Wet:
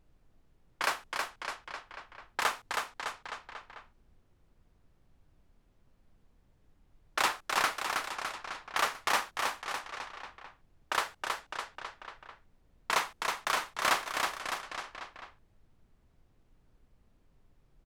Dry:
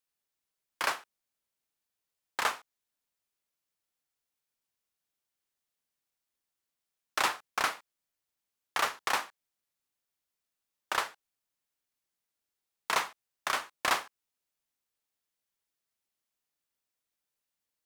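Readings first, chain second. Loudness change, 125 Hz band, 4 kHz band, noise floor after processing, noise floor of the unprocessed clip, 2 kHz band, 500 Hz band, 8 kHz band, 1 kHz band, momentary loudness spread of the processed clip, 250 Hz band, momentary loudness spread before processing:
-1.0 dB, +3.5 dB, +2.0 dB, -68 dBFS, under -85 dBFS, +2.0 dB, +2.5 dB, +2.0 dB, +2.0 dB, 18 LU, +2.0 dB, 11 LU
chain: on a send: bouncing-ball echo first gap 0.32 s, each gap 0.9×, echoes 5; on the sum: low-pass opened by the level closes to 2100 Hz, open at -31 dBFS; added noise brown -63 dBFS

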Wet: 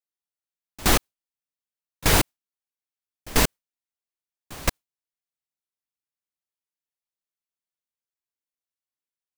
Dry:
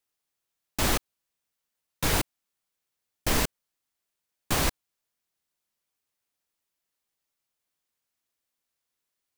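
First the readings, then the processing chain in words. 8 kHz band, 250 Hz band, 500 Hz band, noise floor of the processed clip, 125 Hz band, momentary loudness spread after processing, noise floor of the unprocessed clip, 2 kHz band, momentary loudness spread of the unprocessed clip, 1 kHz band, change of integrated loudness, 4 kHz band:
+4.0 dB, +4.0 dB, +4.0 dB, under -85 dBFS, +4.0 dB, 9 LU, -85 dBFS, +4.5 dB, 7 LU, +4.0 dB, +5.0 dB, +4.0 dB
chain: gate with hold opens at -13 dBFS; gain +7 dB

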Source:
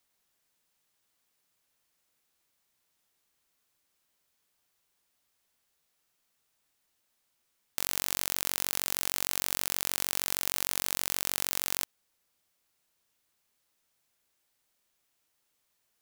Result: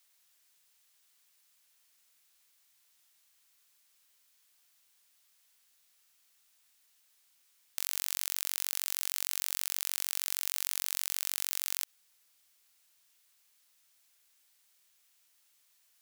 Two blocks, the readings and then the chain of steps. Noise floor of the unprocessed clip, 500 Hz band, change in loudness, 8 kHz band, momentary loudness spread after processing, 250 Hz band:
-77 dBFS, -14.0 dB, -2.5 dB, -2.5 dB, 2 LU, under -15 dB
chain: tilt shelf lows -8 dB; limiter -6 dBFS, peak gain reduction 10 dB

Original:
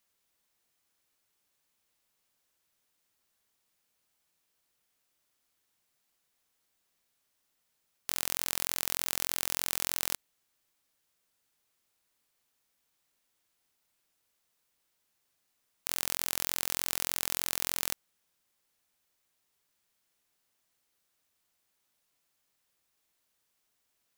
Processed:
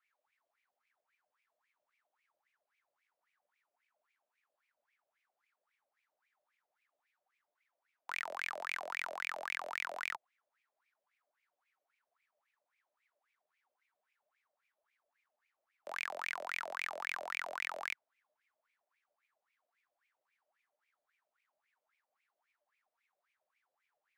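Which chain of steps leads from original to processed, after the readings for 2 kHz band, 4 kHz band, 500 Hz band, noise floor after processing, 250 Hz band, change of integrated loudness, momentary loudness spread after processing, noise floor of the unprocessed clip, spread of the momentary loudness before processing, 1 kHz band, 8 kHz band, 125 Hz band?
+3.0 dB, -11.5 dB, +1.0 dB, under -85 dBFS, -17.0 dB, -8.5 dB, 5 LU, -78 dBFS, 5 LU, +2.0 dB, -22.0 dB, under -25 dB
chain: HPF 66 Hz; frequency shift +92 Hz; wah 3.7 Hz 580–2400 Hz, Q 12; gain +14 dB

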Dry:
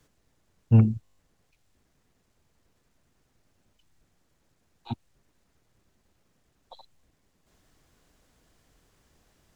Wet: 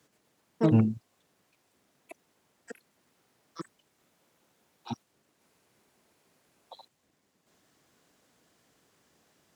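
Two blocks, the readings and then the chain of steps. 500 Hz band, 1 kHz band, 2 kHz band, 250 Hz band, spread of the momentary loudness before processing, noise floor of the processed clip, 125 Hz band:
+7.0 dB, +3.5 dB, +5.5 dB, +0.5 dB, 19 LU, -74 dBFS, -7.0 dB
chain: HPF 170 Hz 12 dB/oct; echoes that change speed 0.125 s, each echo +6 st, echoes 3

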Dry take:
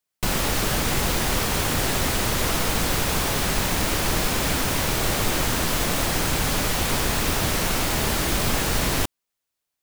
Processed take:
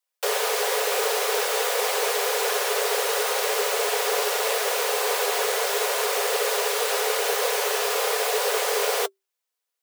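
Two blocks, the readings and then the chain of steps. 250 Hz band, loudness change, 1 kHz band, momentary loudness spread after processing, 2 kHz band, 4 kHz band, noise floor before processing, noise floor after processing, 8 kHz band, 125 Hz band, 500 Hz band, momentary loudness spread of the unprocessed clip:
under -15 dB, -0.5 dB, +1.0 dB, 0 LU, 0.0 dB, -1.0 dB, -83 dBFS, -84 dBFS, -1.0 dB, under -40 dB, +5.5 dB, 0 LU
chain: notch comb 240 Hz; frequency shift +390 Hz

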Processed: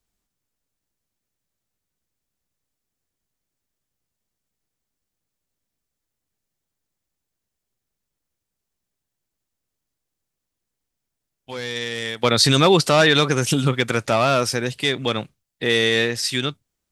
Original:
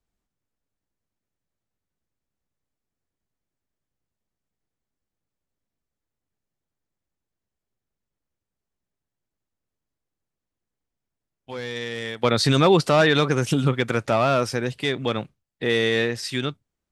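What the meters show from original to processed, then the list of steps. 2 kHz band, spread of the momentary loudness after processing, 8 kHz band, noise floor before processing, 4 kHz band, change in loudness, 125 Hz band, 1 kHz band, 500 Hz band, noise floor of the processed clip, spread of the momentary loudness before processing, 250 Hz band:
+3.5 dB, 12 LU, +8.5 dB, under -85 dBFS, +6.5 dB, +3.0 dB, +1.0 dB, +2.0 dB, +1.5 dB, -82 dBFS, 14 LU, +1.0 dB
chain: high shelf 2900 Hz +9 dB; gain +1 dB

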